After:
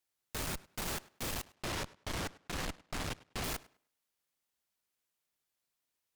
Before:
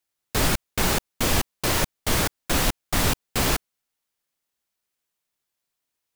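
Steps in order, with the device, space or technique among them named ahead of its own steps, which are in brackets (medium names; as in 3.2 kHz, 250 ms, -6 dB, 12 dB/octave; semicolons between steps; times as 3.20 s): 1.54–3.44 s: distance through air 83 m; rockabilly slapback (valve stage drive 36 dB, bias 0.7; tape echo 102 ms, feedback 25%, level -19 dB, low-pass 5 kHz)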